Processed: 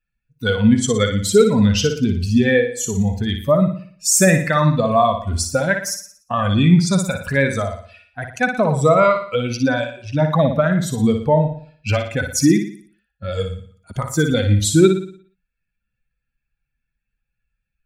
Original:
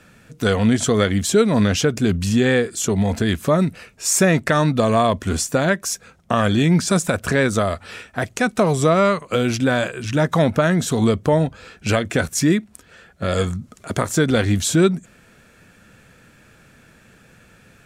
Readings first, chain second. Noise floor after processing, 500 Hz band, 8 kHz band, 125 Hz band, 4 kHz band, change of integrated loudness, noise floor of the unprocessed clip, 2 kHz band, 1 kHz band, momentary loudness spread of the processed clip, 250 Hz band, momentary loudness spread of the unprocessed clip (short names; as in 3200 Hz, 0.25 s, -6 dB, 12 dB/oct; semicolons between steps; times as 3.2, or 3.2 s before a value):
-78 dBFS, +1.5 dB, +1.5 dB, +2.0 dB, +0.5 dB, +1.5 dB, -52 dBFS, +0.5 dB, +1.5 dB, 12 LU, +1.0 dB, 9 LU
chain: per-bin expansion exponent 2; flutter echo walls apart 10 m, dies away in 0.5 s; gain +5.5 dB